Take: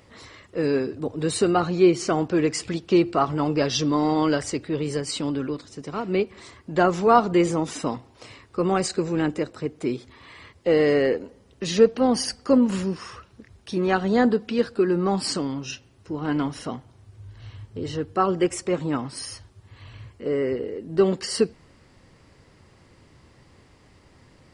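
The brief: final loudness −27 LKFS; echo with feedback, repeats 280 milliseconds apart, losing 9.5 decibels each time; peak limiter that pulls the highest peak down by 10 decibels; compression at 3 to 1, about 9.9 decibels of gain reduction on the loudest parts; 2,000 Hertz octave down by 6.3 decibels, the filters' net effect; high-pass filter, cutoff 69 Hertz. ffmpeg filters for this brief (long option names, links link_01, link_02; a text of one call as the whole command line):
ffmpeg -i in.wav -af "highpass=69,equalizer=frequency=2000:width_type=o:gain=-8.5,acompressor=threshold=-25dB:ratio=3,alimiter=level_in=0.5dB:limit=-24dB:level=0:latency=1,volume=-0.5dB,aecho=1:1:280|560|840|1120:0.335|0.111|0.0365|0.012,volume=6.5dB" out.wav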